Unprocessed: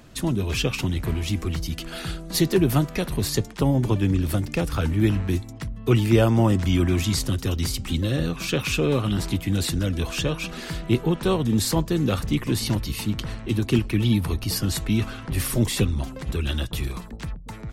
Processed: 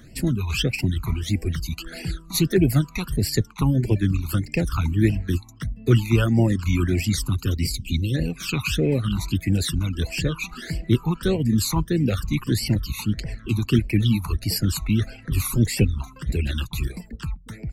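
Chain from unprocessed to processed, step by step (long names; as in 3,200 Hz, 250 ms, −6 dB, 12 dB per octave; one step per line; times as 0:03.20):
all-pass phaser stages 12, 1.6 Hz, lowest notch 530–1,200 Hz
reverb reduction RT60 0.94 s
time-frequency box erased 0:07.62–0:08.14, 530–2,000 Hz
level +3 dB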